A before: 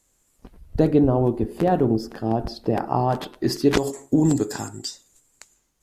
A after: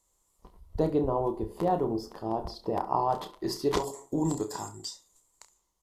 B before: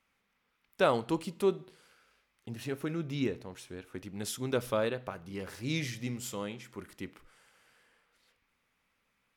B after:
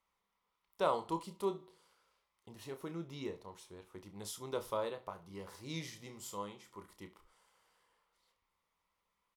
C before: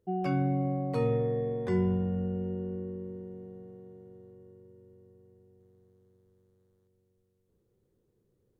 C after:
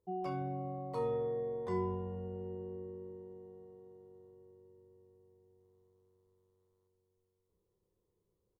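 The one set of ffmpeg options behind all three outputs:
-filter_complex "[0:a]equalizer=f=125:t=o:w=0.33:g=-10,equalizer=f=250:t=o:w=0.33:g=-12,equalizer=f=1k:t=o:w=0.33:g=10,equalizer=f=1.6k:t=o:w=0.33:g=-9,equalizer=f=2.5k:t=o:w=0.33:g=-7,asplit=2[a][b];[b]aecho=0:1:30|68:0.355|0.133[c];[a][c]amix=inputs=2:normalize=0,volume=-7dB"

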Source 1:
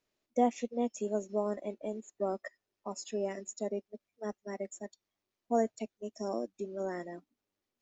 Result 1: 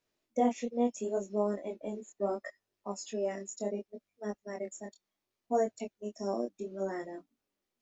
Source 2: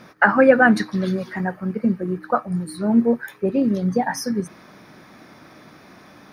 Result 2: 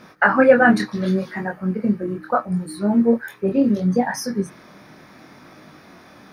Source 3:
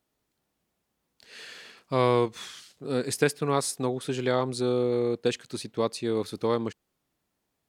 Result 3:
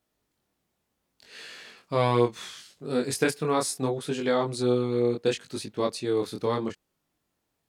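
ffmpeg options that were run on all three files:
-af "flanger=delay=19.5:depth=6:speed=0.71,volume=3.5dB"

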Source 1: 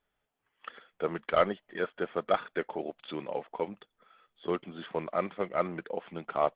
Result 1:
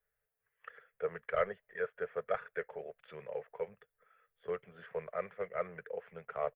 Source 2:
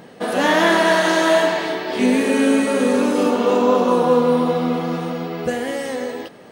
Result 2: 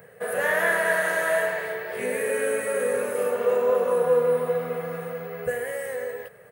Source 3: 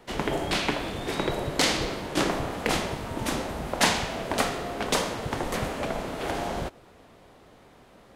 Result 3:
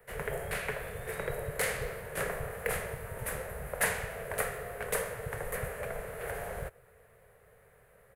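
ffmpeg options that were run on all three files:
-filter_complex "[0:a]firequalizer=gain_entry='entry(130,0);entry(300,-26);entry(440,3);entry(840,-9);entry(1700,2);entry(3300,-20);entry(5500,-25);entry(10000,-7)':delay=0.05:min_phase=1,acrossover=split=110|1500[a][b][c];[c]crystalizer=i=3.5:c=0[d];[a][b][d]amix=inputs=3:normalize=0,volume=-5dB"

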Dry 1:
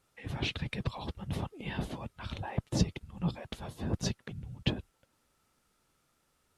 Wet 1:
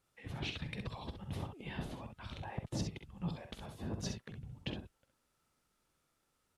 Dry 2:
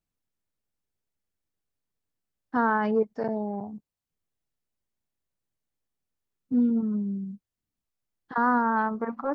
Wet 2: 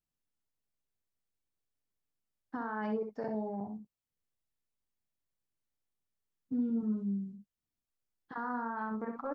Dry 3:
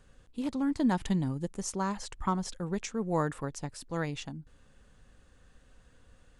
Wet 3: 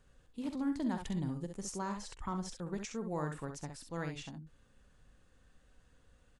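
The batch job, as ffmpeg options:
-filter_complex "[0:a]alimiter=limit=-21.5dB:level=0:latency=1:release=59,asplit=2[a][b];[b]aecho=0:1:46|65:0.224|0.447[c];[a][c]amix=inputs=2:normalize=0,volume=-6.5dB"

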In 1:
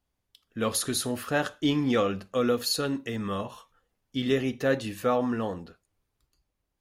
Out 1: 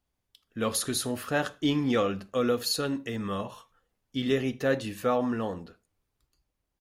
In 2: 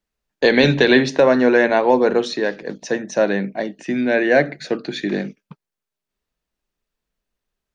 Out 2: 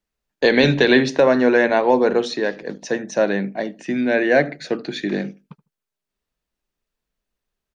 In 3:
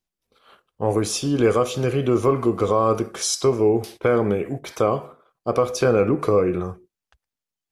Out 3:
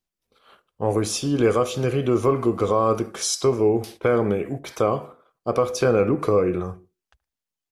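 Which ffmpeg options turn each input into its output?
-filter_complex "[0:a]asplit=2[a][b];[b]adelay=76,lowpass=f=970:p=1,volume=-19.5dB,asplit=2[c][d];[d]adelay=76,lowpass=f=970:p=1,volume=0.26[e];[a][c][e]amix=inputs=3:normalize=0,volume=-1dB"

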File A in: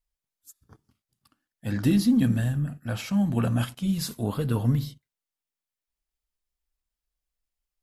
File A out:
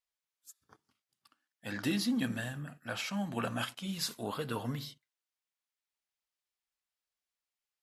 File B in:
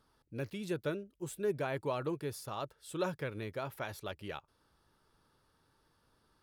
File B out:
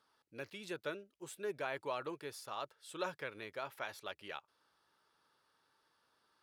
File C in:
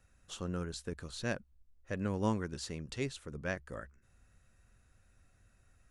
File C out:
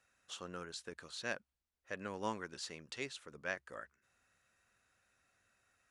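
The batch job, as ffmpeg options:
-af "highpass=f=1k:p=1,highshelf=f=8.2k:g=-10.5,volume=1.5dB"

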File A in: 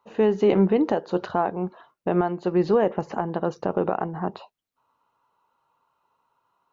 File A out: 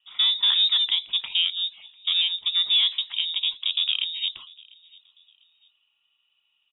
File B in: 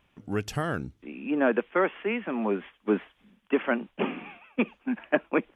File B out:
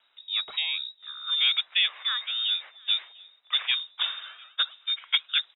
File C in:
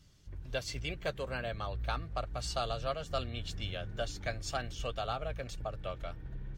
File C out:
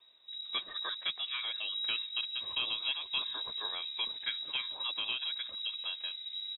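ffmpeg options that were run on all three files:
-filter_complex "[0:a]acrossover=split=180|470|2700[a][b][c][d];[b]volume=24dB,asoftclip=hard,volume=-24dB[e];[a][e][c][d]amix=inputs=4:normalize=0,asplit=2[f][g];[g]adelay=697,lowpass=f=1.4k:p=1,volume=-23.5dB,asplit=2[h][i];[i]adelay=697,lowpass=f=1.4k:p=1,volume=0.36[j];[f][h][j]amix=inputs=3:normalize=0,lowpass=f=3.3k:t=q:w=0.5098,lowpass=f=3.3k:t=q:w=0.6013,lowpass=f=3.3k:t=q:w=0.9,lowpass=f=3.3k:t=q:w=2.563,afreqshift=-3900"

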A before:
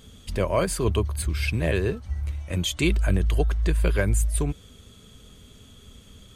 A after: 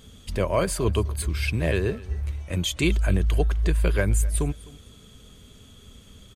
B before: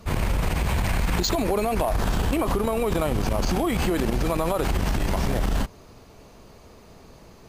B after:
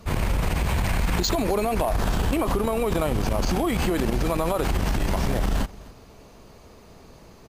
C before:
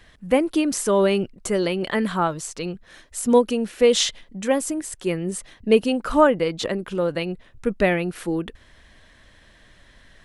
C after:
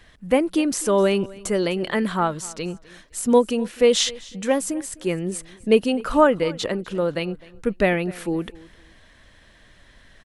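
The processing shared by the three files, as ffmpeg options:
-af "aecho=1:1:255|510:0.0841|0.0194"

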